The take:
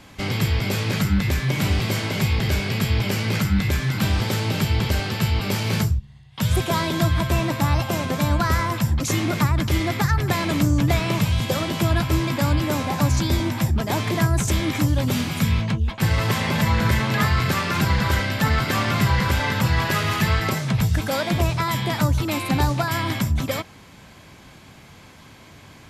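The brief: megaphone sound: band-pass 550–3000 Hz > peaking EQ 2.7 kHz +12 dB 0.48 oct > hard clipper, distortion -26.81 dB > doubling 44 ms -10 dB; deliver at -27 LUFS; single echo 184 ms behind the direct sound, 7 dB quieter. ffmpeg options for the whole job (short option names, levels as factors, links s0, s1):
-filter_complex "[0:a]highpass=550,lowpass=3000,equalizer=f=2700:t=o:w=0.48:g=12,aecho=1:1:184:0.447,asoftclip=type=hard:threshold=0.178,asplit=2[s0][s1];[s1]adelay=44,volume=0.316[s2];[s0][s2]amix=inputs=2:normalize=0,volume=0.668"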